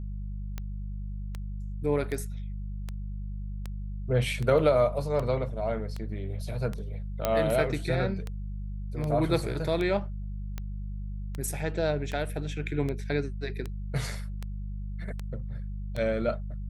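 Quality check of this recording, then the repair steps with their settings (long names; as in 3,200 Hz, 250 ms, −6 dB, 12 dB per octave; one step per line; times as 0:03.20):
mains hum 50 Hz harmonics 4 −35 dBFS
scratch tick 78 rpm −21 dBFS
0:07.25: click −11 dBFS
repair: click removal
hum removal 50 Hz, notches 4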